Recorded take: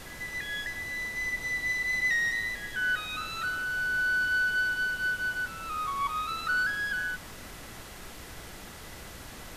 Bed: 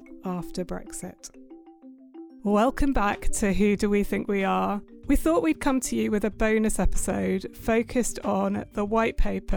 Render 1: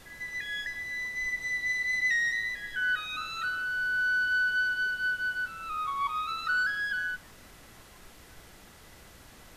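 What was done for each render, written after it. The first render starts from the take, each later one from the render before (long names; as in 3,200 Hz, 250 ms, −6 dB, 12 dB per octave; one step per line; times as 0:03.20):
noise reduction from a noise print 8 dB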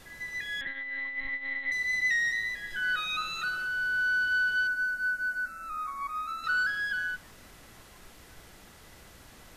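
0:00.61–0:01.72: one-pitch LPC vocoder at 8 kHz 270 Hz
0:02.70–0:03.67: comb filter 5.6 ms, depth 69%
0:04.67–0:06.44: phaser with its sweep stopped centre 640 Hz, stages 8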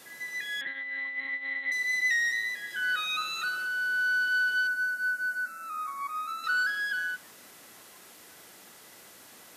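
high-pass filter 240 Hz 12 dB per octave
high-shelf EQ 6,700 Hz +8.5 dB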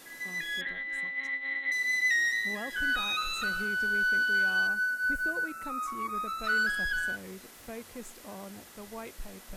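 mix in bed −19 dB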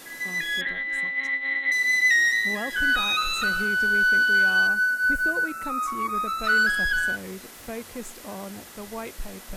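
level +7 dB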